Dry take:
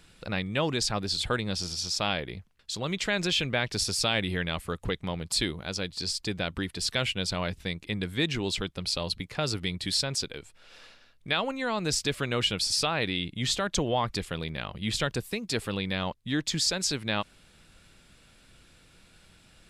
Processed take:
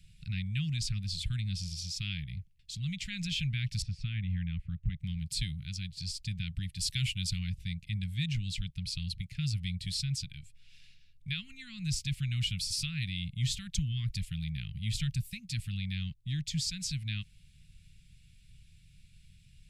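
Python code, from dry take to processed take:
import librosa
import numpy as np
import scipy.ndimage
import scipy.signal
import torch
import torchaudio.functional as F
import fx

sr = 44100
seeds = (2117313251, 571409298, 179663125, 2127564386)

y = fx.lowpass(x, sr, hz=1800.0, slope=12, at=(3.82, 5.0))
y = fx.high_shelf(y, sr, hz=5200.0, db=9.5, at=(6.76, 7.39))
y = fx.high_shelf(y, sr, hz=9700.0, db=5.5, at=(12.36, 15.37))
y = scipy.signal.sosfilt(scipy.signal.cheby1(3, 1.0, [150.0, 2300.0], 'bandstop', fs=sr, output='sos'), y)
y = fx.low_shelf(y, sr, hz=500.0, db=12.0)
y = y * 10.0 ** (-7.5 / 20.0)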